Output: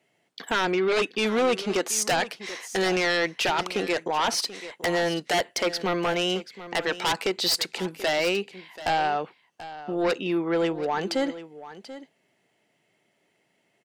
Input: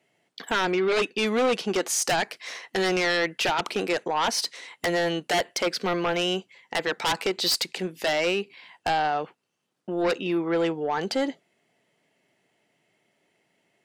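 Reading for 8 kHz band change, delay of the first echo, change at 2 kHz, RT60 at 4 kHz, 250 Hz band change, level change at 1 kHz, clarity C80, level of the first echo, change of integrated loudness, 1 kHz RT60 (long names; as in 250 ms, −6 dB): 0.0 dB, 735 ms, 0.0 dB, no reverb audible, 0.0 dB, 0.0 dB, no reverb audible, −15.0 dB, 0.0 dB, no reverb audible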